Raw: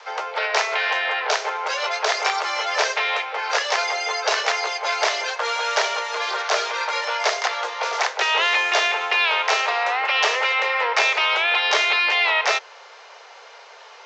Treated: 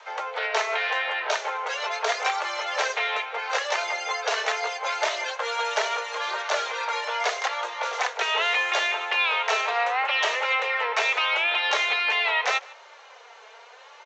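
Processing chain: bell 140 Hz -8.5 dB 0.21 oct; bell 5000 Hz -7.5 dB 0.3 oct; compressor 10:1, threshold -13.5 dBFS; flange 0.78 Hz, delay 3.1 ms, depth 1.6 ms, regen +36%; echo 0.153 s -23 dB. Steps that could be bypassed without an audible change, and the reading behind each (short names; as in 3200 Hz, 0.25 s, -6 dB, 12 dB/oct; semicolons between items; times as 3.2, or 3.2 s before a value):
bell 140 Hz: input band starts at 340 Hz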